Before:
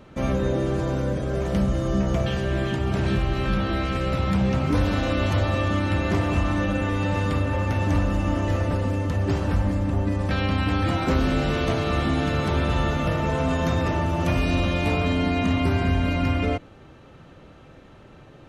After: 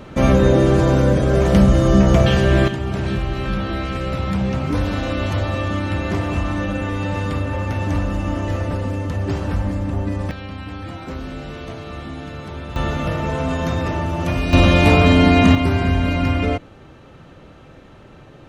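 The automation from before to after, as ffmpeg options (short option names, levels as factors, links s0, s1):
-af "asetnsamples=n=441:p=0,asendcmd='2.68 volume volume 1dB;10.31 volume volume -8.5dB;12.76 volume volume 1.5dB;14.53 volume volume 10.5dB;15.55 volume volume 4dB',volume=3.16"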